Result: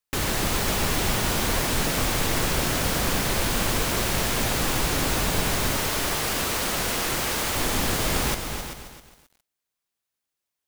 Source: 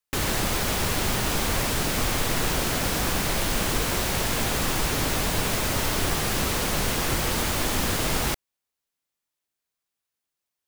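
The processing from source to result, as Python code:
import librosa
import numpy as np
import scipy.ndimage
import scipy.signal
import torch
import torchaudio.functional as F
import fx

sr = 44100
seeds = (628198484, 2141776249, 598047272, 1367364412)

y = fx.low_shelf(x, sr, hz=230.0, db=-8.5, at=(5.76, 7.56))
y = y + 10.0 ** (-10.5 / 20.0) * np.pad(y, (int(388 * sr / 1000.0), 0))[:len(y)]
y = fx.echo_crushed(y, sr, ms=266, feedback_pct=35, bits=8, wet_db=-8.5)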